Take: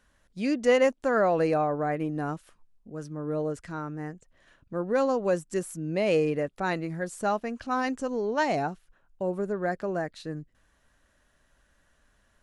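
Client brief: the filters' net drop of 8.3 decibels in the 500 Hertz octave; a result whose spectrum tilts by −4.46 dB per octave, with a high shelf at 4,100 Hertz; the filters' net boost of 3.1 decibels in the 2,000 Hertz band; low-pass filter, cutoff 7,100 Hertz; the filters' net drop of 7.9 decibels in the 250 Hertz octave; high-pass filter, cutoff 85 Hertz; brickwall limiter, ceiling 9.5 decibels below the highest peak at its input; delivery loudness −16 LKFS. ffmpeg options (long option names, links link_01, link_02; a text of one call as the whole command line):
ffmpeg -i in.wav -af "highpass=85,lowpass=7100,equalizer=frequency=250:width_type=o:gain=-8,equalizer=frequency=500:width_type=o:gain=-8,equalizer=frequency=2000:width_type=o:gain=6,highshelf=frequency=4100:gain=-7.5,volume=20dB,alimiter=limit=-4.5dB:level=0:latency=1" out.wav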